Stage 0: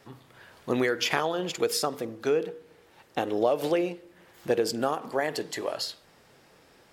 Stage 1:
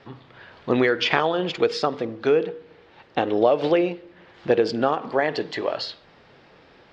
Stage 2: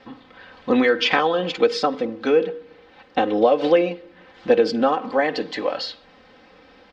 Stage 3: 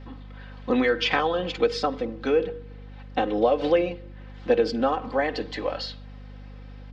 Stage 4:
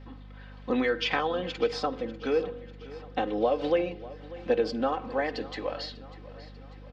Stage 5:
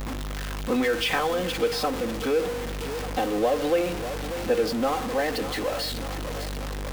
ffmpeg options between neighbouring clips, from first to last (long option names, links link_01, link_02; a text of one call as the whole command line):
ffmpeg -i in.wav -af "lowpass=frequency=4300:width=0.5412,lowpass=frequency=4300:width=1.3066,volume=6dB" out.wav
ffmpeg -i in.wav -af "aecho=1:1:3.9:0.8" out.wav
ffmpeg -i in.wav -af "aeval=exprs='val(0)+0.0158*(sin(2*PI*50*n/s)+sin(2*PI*2*50*n/s)/2+sin(2*PI*3*50*n/s)/3+sin(2*PI*4*50*n/s)/4+sin(2*PI*5*50*n/s)/5)':channel_layout=same,volume=-4.5dB" out.wav
ffmpeg -i in.wav -af "aecho=1:1:594|1188|1782|2376|2970:0.126|0.0692|0.0381|0.0209|0.0115,volume=-4.5dB" out.wav
ffmpeg -i in.wav -af "aeval=exprs='val(0)+0.5*0.0447*sgn(val(0))':channel_layout=same" out.wav